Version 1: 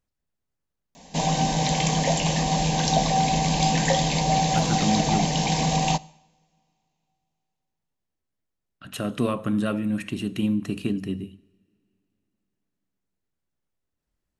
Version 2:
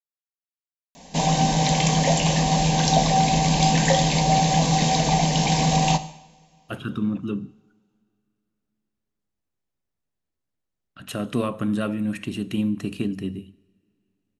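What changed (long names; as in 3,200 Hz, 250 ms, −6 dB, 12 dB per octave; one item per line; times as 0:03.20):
speech: entry +2.15 s
background: send +11.5 dB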